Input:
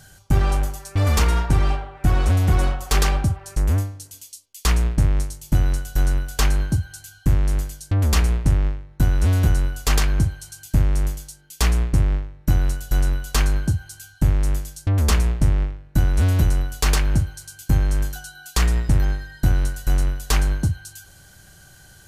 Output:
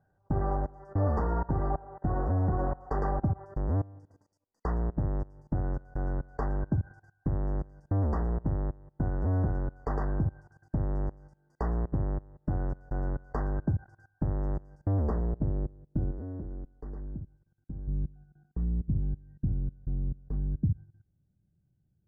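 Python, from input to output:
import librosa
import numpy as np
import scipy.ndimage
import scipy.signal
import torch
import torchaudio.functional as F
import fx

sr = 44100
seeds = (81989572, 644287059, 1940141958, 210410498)

y = fx.level_steps(x, sr, step_db=22)
y = fx.brickwall_bandstop(y, sr, low_hz=2000.0, high_hz=4500.0)
y = fx.low_shelf(y, sr, hz=80.0, db=-12.0)
y = fx.filter_sweep_lowpass(y, sr, from_hz=810.0, to_hz=200.0, start_s=14.67, end_s=17.34, q=1.1)
y = fx.peak_eq(y, sr, hz=110.0, db=-14.0, octaves=2.7, at=(16.11, 17.88))
y = y * 10.0 ** (1.0 / 20.0)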